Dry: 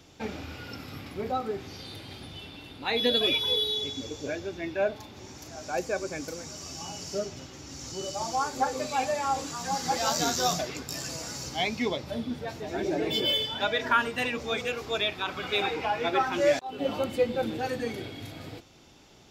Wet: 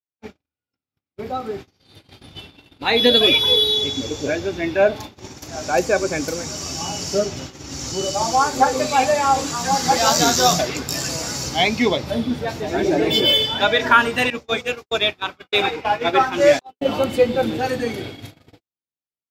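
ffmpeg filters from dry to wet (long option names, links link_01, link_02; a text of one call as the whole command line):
ffmpeg -i in.wav -filter_complex "[0:a]asettb=1/sr,asplit=3[link_01][link_02][link_03];[link_01]atrim=end=14.304[link_04];[link_02]atrim=start=14.3:end=16.86,asetpts=PTS-STARTPTS,afade=type=in:duration=0.004:curve=qsin,afade=type=out:start_time=2.556:duration=0.004:curve=qsin,agate=range=-33dB:threshold=-27dB:ratio=3:release=100:detection=peak[link_05];[link_03]atrim=start=16.856[link_06];[link_04][link_05]acrossfade=duration=0.004:curve1=hsin:curve2=qsin[link_07];[link_07][link_06]acrossfade=duration=0.004:curve1=qsin:curve2=hsin,dynaudnorm=framelen=550:gausssize=7:maxgain=13dB,agate=range=-53dB:threshold=-32dB:ratio=16:detection=peak" out.wav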